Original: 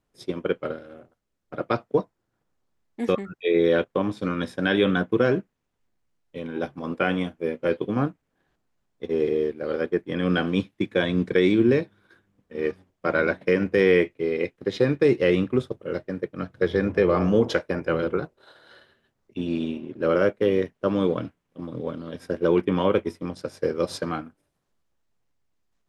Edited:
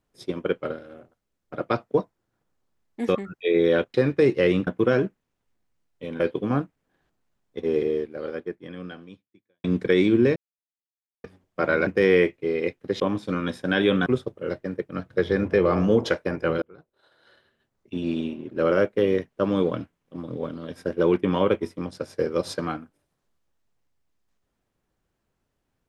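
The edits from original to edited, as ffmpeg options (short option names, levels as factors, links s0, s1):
-filter_complex "[0:a]asplit=11[s0][s1][s2][s3][s4][s5][s6][s7][s8][s9][s10];[s0]atrim=end=3.942[s11];[s1]atrim=start=14.768:end=15.502[s12];[s2]atrim=start=4.998:end=6.532[s13];[s3]atrim=start=7.658:end=11.1,asetpts=PTS-STARTPTS,afade=t=out:st=1.602:d=1.84:c=qua[s14];[s4]atrim=start=11.1:end=11.82,asetpts=PTS-STARTPTS,afade=t=in:d=0.004:c=hsin,afade=t=out:st=0.716:d=0.004:c=hsin[s15];[s5]atrim=start=11.82:end=12.7,asetpts=PTS-STARTPTS,volume=0[s16];[s6]atrim=start=12.7:end=13.332,asetpts=PTS-STARTPTS,afade=t=in:d=0.004:c=hsin[s17];[s7]atrim=start=13.638:end=14.772[s18];[s8]atrim=start=3.938:end=5.002[s19];[s9]atrim=start=15.498:end=18.06,asetpts=PTS-STARTPTS,afade=t=out:st=2.558:d=0.004:c=hsin[s20];[s10]atrim=start=18.06,asetpts=PTS-STARTPTS,afade=t=in:d=1.46[s21];[s11][s12]acrossfade=d=0.004:c1=hsin:c2=hsin[s22];[s22][s13]acrossfade=d=0.004:c1=hsin:c2=hsin[s23];[s14][s15][s16][s17]concat=n=4:v=0:a=1[s24];[s23][s24]acrossfade=d=0.004:c1=hsin:c2=hsin[s25];[s25][s18]acrossfade=d=0.004:c1=hsin:c2=hsin[s26];[s26][s19]acrossfade=d=0.004:c1=hsin:c2=hsin[s27];[s20][s21]concat=n=2:v=0:a=1[s28];[s27][s28]acrossfade=d=0.004:c1=hsin:c2=hsin"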